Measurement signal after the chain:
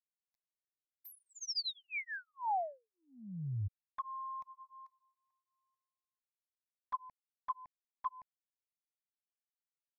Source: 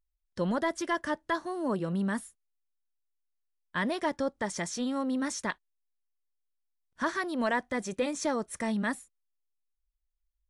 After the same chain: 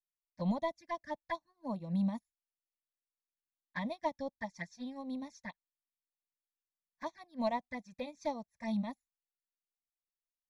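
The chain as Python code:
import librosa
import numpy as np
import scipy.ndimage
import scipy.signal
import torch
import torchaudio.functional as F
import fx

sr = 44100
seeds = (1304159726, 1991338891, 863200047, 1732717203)

y = fx.env_flanger(x, sr, rest_ms=7.2, full_db=-27.5)
y = fx.fixed_phaser(y, sr, hz=2000.0, stages=8)
y = fx.upward_expand(y, sr, threshold_db=-52.0, expansion=2.5)
y = y * 10.0 ** (3.5 / 20.0)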